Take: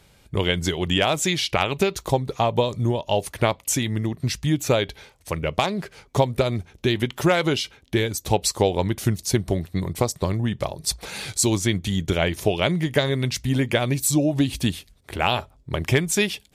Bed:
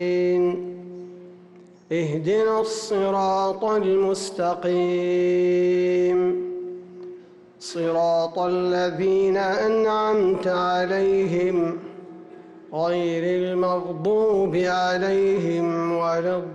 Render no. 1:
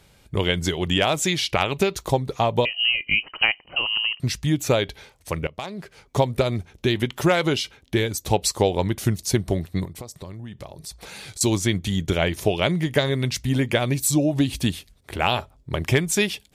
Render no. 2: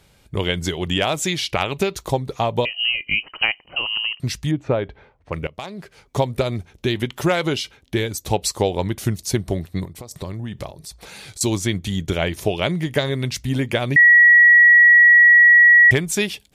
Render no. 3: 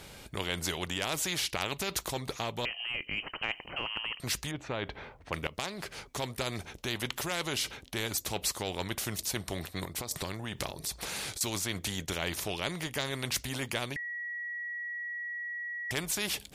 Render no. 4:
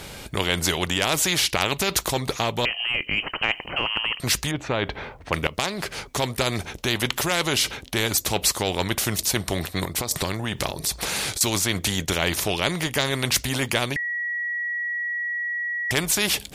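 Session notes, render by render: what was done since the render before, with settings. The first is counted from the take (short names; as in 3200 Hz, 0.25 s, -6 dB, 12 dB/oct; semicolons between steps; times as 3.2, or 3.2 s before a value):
2.65–4.2 inverted band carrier 3000 Hz; 5.47–6.27 fade in, from -18 dB; 9.85–11.41 compressor 3:1, threshold -37 dBFS
4.51–5.33 LPF 1500 Hz; 10.11–10.71 gain +7 dB; 13.96–15.91 bleep 1920 Hz -7 dBFS
reverse; compressor, threshold -22 dBFS, peak gain reduction 12 dB; reverse; spectral compressor 2:1
gain +10.5 dB; limiter -3 dBFS, peak gain reduction 3 dB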